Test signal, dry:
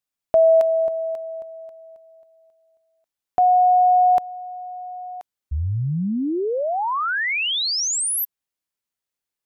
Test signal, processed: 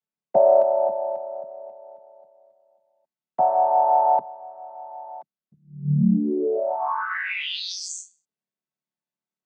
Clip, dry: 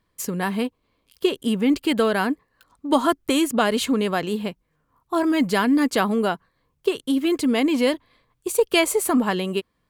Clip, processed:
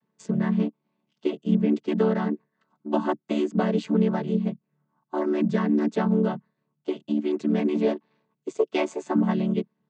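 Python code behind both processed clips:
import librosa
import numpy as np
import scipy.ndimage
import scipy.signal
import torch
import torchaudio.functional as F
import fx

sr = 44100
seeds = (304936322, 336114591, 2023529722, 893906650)

p1 = fx.chord_vocoder(x, sr, chord='major triad', root=50)
p2 = fx.rider(p1, sr, range_db=4, speed_s=2.0)
p3 = p1 + (p2 * librosa.db_to_amplitude(0.0))
y = p3 * librosa.db_to_amplitude(-7.5)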